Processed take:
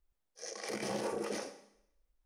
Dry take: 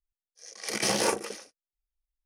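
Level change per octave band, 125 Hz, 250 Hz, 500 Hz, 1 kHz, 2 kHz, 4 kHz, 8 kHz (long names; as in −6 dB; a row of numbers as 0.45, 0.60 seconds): −7.0, −5.0, −5.5, −9.0, −11.0, −13.5, −13.5 decibels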